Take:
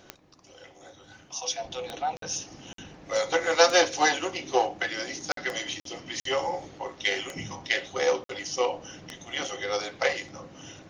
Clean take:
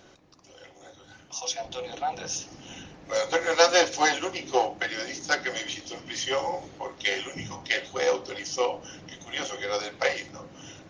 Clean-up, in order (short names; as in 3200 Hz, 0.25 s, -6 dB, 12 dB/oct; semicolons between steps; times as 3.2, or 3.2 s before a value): de-click; interpolate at 2.17/2.73/5.32/5.8/6.2/8.24, 53 ms